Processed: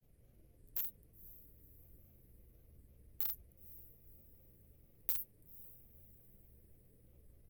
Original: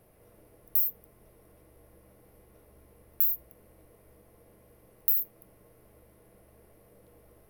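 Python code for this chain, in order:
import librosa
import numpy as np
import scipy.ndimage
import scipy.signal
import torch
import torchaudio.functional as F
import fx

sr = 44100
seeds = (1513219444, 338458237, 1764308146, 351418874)

p1 = fx.low_shelf(x, sr, hz=130.0, db=-4.5)
p2 = fx.granulator(p1, sr, seeds[0], grain_ms=100.0, per_s=20.0, spray_ms=14.0, spread_st=3)
p3 = fx.tone_stack(p2, sr, knobs='10-0-1')
p4 = fx.echo_diffused(p3, sr, ms=500, feedback_pct=45, wet_db=-15.5)
p5 = fx.quant_dither(p4, sr, seeds[1], bits=6, dither='none')
p6 = p4 + (p5 * 10.0 ** (-7.5 / 20.0))
y = p6 * 10.0 ** (11.5 / 20.0)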